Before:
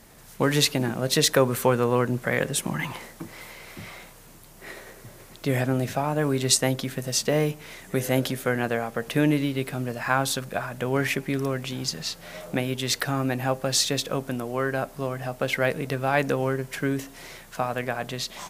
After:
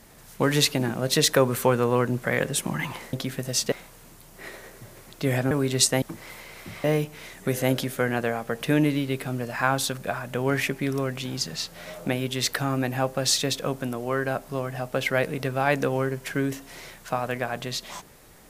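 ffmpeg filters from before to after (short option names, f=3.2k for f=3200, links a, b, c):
-filter_complex "[0:a]asplit=6[a][b][c][d][e][f];[a]atrim=end=3.132[g];[b]atrim=start=6.718:end=7.312[h];[c]atrim=start=3.948:end=5.742[i];[d]atrim=start=6.208:end=6.722[j];[e]atrim=start=3.128:end=3.952[k];[f]atrim=start=7.308[l];[g][h]acrossfade=d=0.004:c1=hsin:c2=hsin[m];[m][i]acrossfade=d=0.004:c1=hsin:c2=hsin[n];[n][j]acrossfade=d=0.004:c1=hsin:c2=hsin[o];[o][k]acrossfade=d=0.004:c1=hsin:c2=hsin[p];[p][l]acrossfade=d=0.004:c1=hsin:c2=hsin"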